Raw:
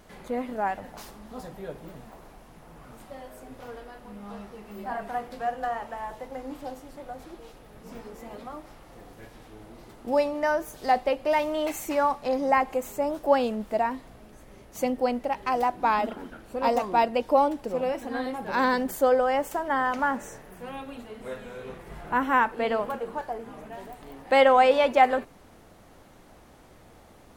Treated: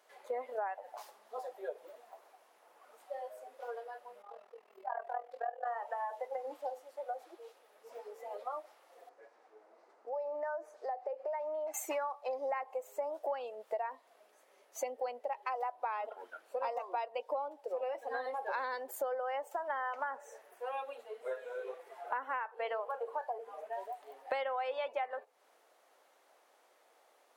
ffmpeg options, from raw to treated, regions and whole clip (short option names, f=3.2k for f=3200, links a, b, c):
-filter_complex "[0:a]asettb=1/sr,asplit=3[a][b][c];[a]atrim=end=4.224[d];[b]atrim=start=4.22:end=5.67,asetpts=PTS-STARTPTS,afade=t=in:d=0.004:c=qsin,afade=t=out:st=1.446:d=0.004:c=qsin,highshelf=f=5.5k:g=-9.5,bandreject=f=50:t=h:w=6,bandreject=f=100:t=h:w=6,bandreject=f=150:t=h:w=6,bandreject=f=200:t=h:w=6,bandreject=f=250:t=h:w=6,bandreject=f=300:t=h:w=6,bandreject=f=350:t=h:w=6,tremolo=f=41:d=0.889[e];[c]atrim=start=5.666[f];[d][e]acrossfade=d=0.004:c1=hsin:c2=qsin[g];[g][f]acrossfade=d=0.004:c1=qsin:c2=hsin,asettb=1/sr,asplit=3[h][i][j];[h]atrim=end=9.094[k];[i]atrim=start=9.09:end=11.74,asetpts=PTS-STARTPTS,afade=t=in:d=0.004:c=qsin,afade=t=out:st=2.646:d=0.004:c=qsin,highpass=110,lowpass=4.7k,equalizer=f=3.3k:w=1.3:g=-12,acompressor=threshold=-34dB:ratio=5:attack=3.2:release=140:knee=1:detection=peak[l];[j]atrim=start=11.736[m];[k][l]acrossfade=d=0.004:c1=hsin:c2=qsin[n];[n][m]acrossfade=d=0.004:c1=qsin:c2=hsin,highpass=f=470:w=0.5412,highpass=f=470:w=1.3066,afftdn=nr=14:nf=-37,acompressor=threshold=-37dB:ratio=10,volume=3dB"